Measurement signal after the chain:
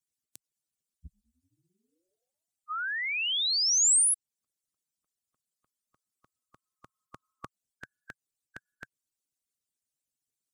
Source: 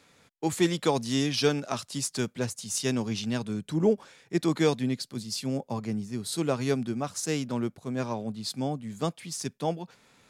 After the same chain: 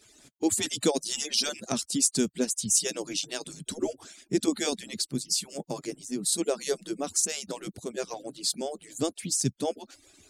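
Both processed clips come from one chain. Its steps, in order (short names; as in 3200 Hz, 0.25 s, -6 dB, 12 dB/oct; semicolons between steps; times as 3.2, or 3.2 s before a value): median-filter separation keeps percussive; graphic EQ 125/250/1000/2000/8000 Hz +7/+4/-9/-4/+9 dB; in parallel at +1.5 dB: compressor, threshold -39 dBFS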